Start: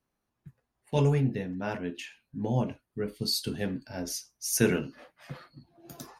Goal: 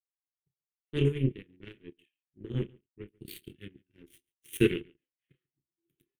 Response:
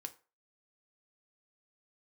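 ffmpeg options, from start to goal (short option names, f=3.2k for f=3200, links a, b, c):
-filter_complex "[0:a]asettb=1/sr,asplit=3[a][b][c];[a]atrim=end=3.084[d];[b]atrim=start=3.08:end=3.95,asetpts=PTS-STARTPTS,afade=t=in:d=0.004:c=qsin,afade=t=out:st=0.866:d=0.004:c=qsin,equalizer=f=530:t=o:w=1:g=-7.5[e];[c]atrim=start=3.946[f];[d][e]acrossfade=d=0.004:c1=hsin:c2=qsin[g];[g][f]acrossfade=d=0.004:c1=qsin:c2=hsin,asplit=2[h][i];[i]adelay=30,volume=-8dB[j];[h][j]amix=inputs=2:normalize=0,aeval=exprs='0.335*(cos(1*acos(clip(val(0)/0.335,-1,1)))-cos(1*PI/2))+0.0473*(cos(7*acos(clip(val(0)/0.335,-1,1)))-cos(7*PI/2))':c=same,firequalizer=gain_entry='entry(160,0);entry(240,-5);entry(360,8);entry(660,-29);entry(1900,-3);entry(3100,5);entry(4900,-26);entry(9000,-5)':delay=0.05:min_phase=1,asplit=2[k][l];[l]adelay=139.9,volume=-26dB,highshelf=f=4k:g=-3.15[m];[k][m]amix=inputs=2:normalize=0"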